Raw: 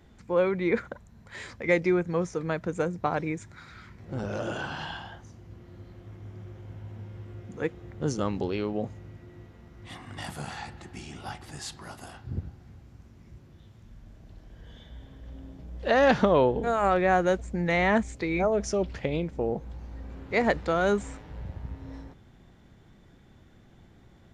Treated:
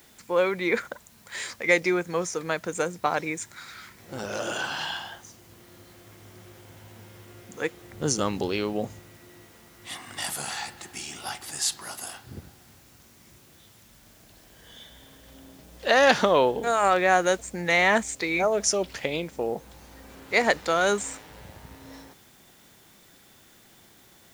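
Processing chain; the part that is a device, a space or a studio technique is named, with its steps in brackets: turntable without a phono preamp (RIAA curve recording; white noise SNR 30 dB); 7.91–9 low shelf 230 Hz +9 dB; gain +3.5 dB

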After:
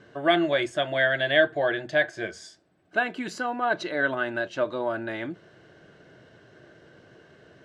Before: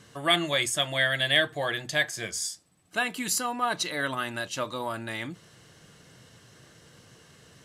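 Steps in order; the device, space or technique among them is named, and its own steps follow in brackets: inside a cardboard box (LPF 3500 Hz 12 dB/oct; small resonant body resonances 370/610/1500 Hz, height 12 dB, ringing for 20 ms); gain -3.5 dB

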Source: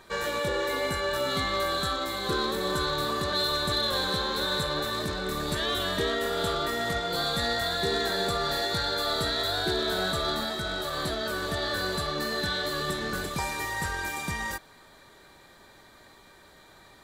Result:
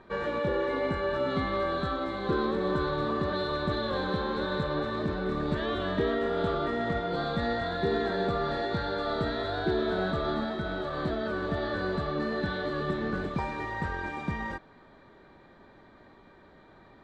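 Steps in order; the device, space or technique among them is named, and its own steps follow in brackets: phone in a pocket (LPF 3400 Hz 12 dB/oct; bell 240 Hz +5 dB 1.3 oct; high shelf 2300 Hz -11 dB)

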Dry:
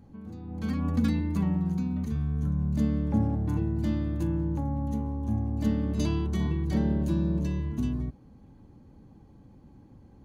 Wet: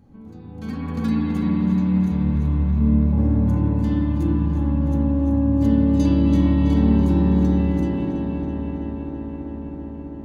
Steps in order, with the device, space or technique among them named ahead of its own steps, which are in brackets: 2.57–3.18 steep low-pass 830 Hz 48 dB/oct; dub delay into a spring reverb (darkening echo 0.328 s, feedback 85%, low-pass 4700 Hz, level -8 dB; spring tank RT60 3.7 s, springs 54/58 ms, chirp 30 ms, DRR -3.5 dB)

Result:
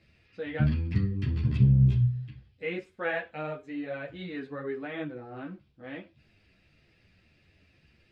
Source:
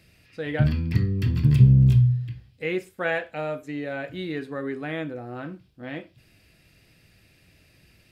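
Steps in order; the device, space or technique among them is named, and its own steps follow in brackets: string-machine ensemble chorus (ensemble effect; LPF 4100 Hz 12 dB/oct); gain -2 dB

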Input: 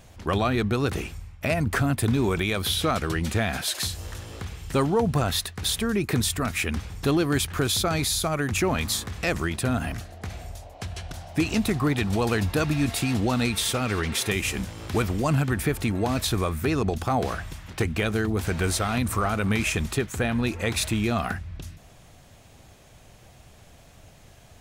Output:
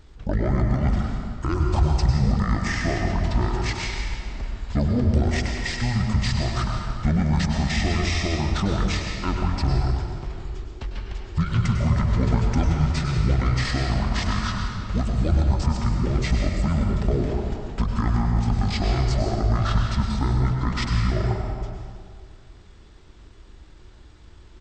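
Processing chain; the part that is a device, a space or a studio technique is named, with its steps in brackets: monster voice (pitch shift -11 st; low shelf 150 Hz +7.5 dB; reverb RT60 2.0 s, pre-delay 95 ms, DRR 1.5 dB); gain -3 dB

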